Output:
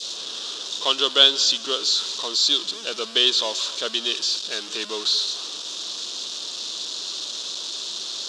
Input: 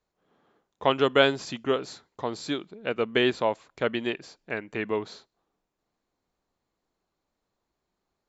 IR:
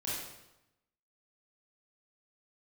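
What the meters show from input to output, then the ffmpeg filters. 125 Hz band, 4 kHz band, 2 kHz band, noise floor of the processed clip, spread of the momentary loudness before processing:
below −15 dB, +17.0 dB, −1.0 dB, −35 dBFS, 13 LU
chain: -filter_complex "[0:a]aeval=exprs='val(0)+0.5*0.0398*sgn(val(0))':channel_layout=same,adynamicequalizer=threshold=0.01:dfrequency=1200:dqfactor=1.1:tfrequency=1200:tqfactor=1.1:attack=5:release=100:ratio=0.375:range=3:mode=boostabove:tftype=bell,asplit=2[link_01][link_02];[link_02]aeval=exprs='val(0)*gte(abs(val(0)),0.0355)':channel_layout=same,volume=-6.5dB[link_03];[link_01][link_03]amix=inputs=2:normalize=0,aexciter=amount=9:drive=6.5:freq=3000,highpass=frequency=230:width=0.5412,highpass=frequency=230:width=1.3066,equalizer=frequency=250:width_type=q:width=4:gain=-5,equalizer=frequency=800:width_type=q:width=4:gain=-7,equalizer=frequency=2200:width_type=q:width=4:gain=-5,equalizer=frequency=3600:width_type=q:width=4:gain=8,lowpass=frequency=6000:width=0.5412,lowpass=frequency=6000:width=1.3066,asplit=2[link_04][link_05];[1:a]atrim=start_sample=2205,adelay=142[link_06];[link_05][link_06]afir=irnorm=-1:irlink=0,volume=-22.5dB[link_07];[link_04][link_07]amix=inputs=2:normalize=0,volume=-10dB"

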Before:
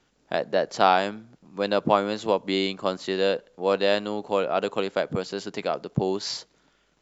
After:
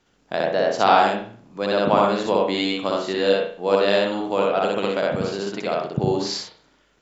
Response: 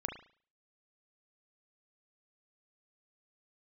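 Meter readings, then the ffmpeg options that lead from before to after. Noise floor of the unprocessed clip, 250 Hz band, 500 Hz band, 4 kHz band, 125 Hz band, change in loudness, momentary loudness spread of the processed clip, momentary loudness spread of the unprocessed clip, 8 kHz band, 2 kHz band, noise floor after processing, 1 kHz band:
−67 dBFS, +4.5 dB, +4.5 dB, +3.5 dB, +4.0 dB, +4.0 dB, 10 LU, 9 LU, can't be measured, +4.0 dB, −62 dBFS, +4.5 dB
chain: -filter_complex "[0:a]asplit=2[link_01][link_02];[1:a]atrim=start_sample=2205,adelay=61[link_03];[link_02][link_03]afir=irnorm=-1:irlink=0,volume=1dB[link_04];[link_01][link_04]amix=inputs=2:normalize=0"

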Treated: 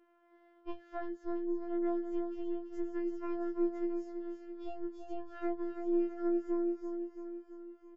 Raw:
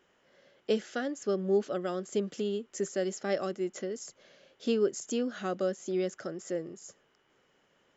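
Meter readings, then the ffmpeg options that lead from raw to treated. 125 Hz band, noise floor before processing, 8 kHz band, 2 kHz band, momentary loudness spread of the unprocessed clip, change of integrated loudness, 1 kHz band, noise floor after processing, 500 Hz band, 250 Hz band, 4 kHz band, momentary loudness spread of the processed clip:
below −20 dB, −70 dBFS, can't be measured, −12.0 dB, 11 LU, −4.5 dB, −4.0 dB, −65 dBFS, −7.0 dB, +0.5 dB, below −20 dB, 12 LU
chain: -af "lowpass=1200,acompressor=threshold=-37dB:ratio=6,aeval=exprs='0.0473*(cos(1*acos(clip(val(0)/0.0473,-1,1)))-cos(1*PI/2))+0.0168*(cos(2*acos(clip(val(0)/0.0473,-1,1)))-cos(2*PI/2))':channel_layout=same,afftfilt=real='hypot(re,im)*cos(PI*b)':imag='0':win_size=1024:overlap=0.75,aecho=1:1:334|668|1002|1336|1670|2004|2338:0.422|0.24|0.137|0.0781|0.0445|0.0254|0.0145,afftfilt=real='re*4*eq(mod(b,16),0)':imag='im*4*eq(mod(b,16),0)':win_size=2048:overlap=0.75"

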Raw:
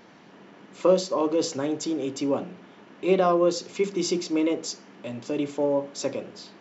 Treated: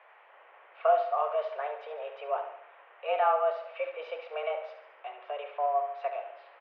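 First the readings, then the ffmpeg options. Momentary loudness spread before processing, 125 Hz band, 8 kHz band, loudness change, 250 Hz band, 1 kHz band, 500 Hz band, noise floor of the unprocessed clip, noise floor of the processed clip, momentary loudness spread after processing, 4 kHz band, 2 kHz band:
14 LU, below −40 dB, can't be measured, −5.5 dB, below −40 dB, +3.0 dB, −6.0 dB, −52 dBFS, −57 dBFS, 17 LU, −14.5 dB, −2.0 dB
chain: -filter_complex "[0:a]asplit=2[link_01][link_02];[link_02]aecho=0:1:71|142|213|284|355|426:0.335|0.178|0.0941|0.0499|0.0264|0.014[link_03];[link_01][link_03]amix=inputs=2:normalize=0,highpass=frequency=470:width_type=q:width=0.5412,highpass=frequency=470:width_type=q:width=1.307,lowpass=frequency=2600:width_type=q:width=0.5176,lowpass=frequency=2600:width_type=q:width=0.7071,lowpass=frequency=2600:width_type=q:width=1.932,afreqshift=140,volume=-2.5dB"

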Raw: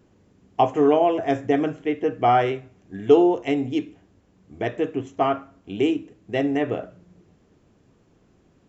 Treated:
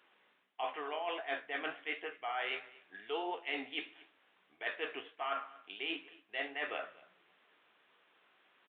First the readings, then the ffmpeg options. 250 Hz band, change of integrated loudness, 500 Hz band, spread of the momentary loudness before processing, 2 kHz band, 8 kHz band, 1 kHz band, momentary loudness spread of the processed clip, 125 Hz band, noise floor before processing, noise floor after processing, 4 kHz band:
−27.0 dB, −17.5 dB, −21.5 dB, 14 LU, −4.0 dB, can't be measured, −17.0 dB, 6 LU, below −40 dB, −60 dBFS, −72 dBFS, −4.0 dB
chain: -af "highpass=1400,areverse,acompressor=threshold=-40dB:ratio=16,areverse,flanger=delay=10:depth=9.8:regen=55:speed=1.5:shape=triangular,aecho=1:1:233:0.0841,aresample=8000,aresample=44100,volume=9.5dB"

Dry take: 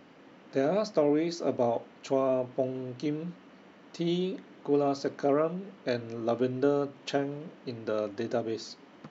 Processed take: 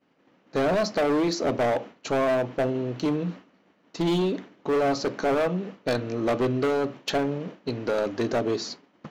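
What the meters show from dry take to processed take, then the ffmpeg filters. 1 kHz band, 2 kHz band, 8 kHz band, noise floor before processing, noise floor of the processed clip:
+6.5 dB, +10.0 dB, can't be measured, −55 dBFS, −64 dBFS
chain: -af "asoftclip=type=hard:threshold=-28.5dB,agate=range=-33dB:threshold=-42dB:ratio=3:detection=peak,volume=8.5dB"

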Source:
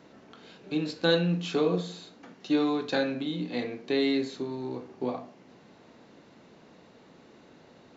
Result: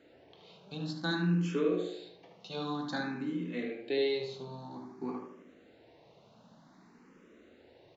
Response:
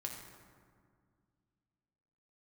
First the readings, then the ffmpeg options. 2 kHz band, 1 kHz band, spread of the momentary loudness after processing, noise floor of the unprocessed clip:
−4.5 dB, −5.0 dB, 17 LU, −56 dBFS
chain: -filter_complex "[0:a]asplit=2[link_01][link_02];[link_02]adelay=75,lowpass=frequency=2200:poles=1,volume=-3dB,asplit=2[link_03][link_04];[link_04]adelay=75,lowpass=frequency=2200:poles=1,volume=0.5,asplit=2[link_05][link_06];[link_06]adelay=75,lowpass=frequency=2200:poles=1,volume=0.5,asplit=2[link_07][link_08];[link_08]adelay=75,lowpass=frequency=2200:poles=1,volume=0.5,asplit=2[link_09][link_10];[link_10]adelay=75,lowpass=frequency=2200:poles=1,volume=0.5,asplit=2[link_11][link_12];[link_12]adelay=75,lowpass=frequency=2200:poles=1,volume=0.5,asplit=2[link_13][link_14];[link_14]adelay=75,lowpass=frequency=2200:poles=1,volume=0.5[link_15];[link_03][link_05][link_07][link_09][link_11][link_13][link_15]amix=inputs=7:normalize=0[link_16];[link_01][link_16]amix=inputs=2:normalize=0,asplit=2[link_17][link_18];[link_18]afreqshift=0.53[link_19];[link_17][link_19]amix=inputs=2:normalize=1,volume=-4dB"

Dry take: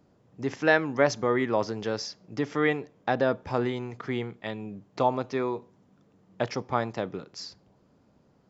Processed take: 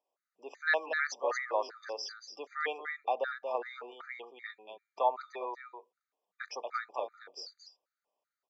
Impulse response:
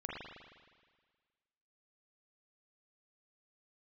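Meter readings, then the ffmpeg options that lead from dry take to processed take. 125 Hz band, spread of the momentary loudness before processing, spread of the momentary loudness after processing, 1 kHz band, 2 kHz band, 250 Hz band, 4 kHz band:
below −40 dB, 13 LU, 16 LU, −4.0 dB, −4.0 dB, −26.0 dB, −6.0 dB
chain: -filter_complex "[0:a]afftdn=noise_reduction=13:noise_floor=-42,highpass=frequency=560:width=0.5412,highpass=frequency=560:width=1.3066,asplit=2[link_01][link_02];[link_02]aecho=0:1:233:0.473[link_03];[link_01][link_03]amix=inputs=2:normalize=0,afftfilt=real='re*gt(sin(2*PI*2.6*pts/sr)*(1-2*mod(floor(b*sr/1024/1200),2)),0)':imag='im*gt(sin(2*PI*2.6*pts/sr)*(1-2*mod(floor(b*sr/1024/1200),2)),0)':win_size=1024:overlap=0.75,volume=-2.5dB"

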